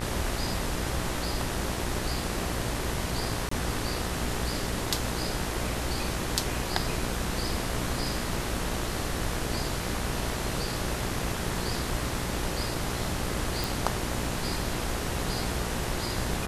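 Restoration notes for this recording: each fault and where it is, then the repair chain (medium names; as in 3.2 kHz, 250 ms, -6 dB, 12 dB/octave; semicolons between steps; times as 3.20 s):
buzz 60 Hz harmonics 34 -35 dBFS
3.49–3.51 s: dropout 24 ms
13.64 s: pop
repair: de-click; de-hum 60 Hz, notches 34; interpolate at 3.49 s, 24 ms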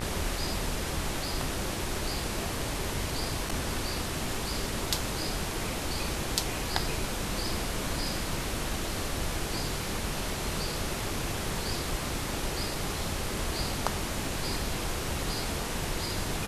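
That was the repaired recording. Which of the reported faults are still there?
nothing left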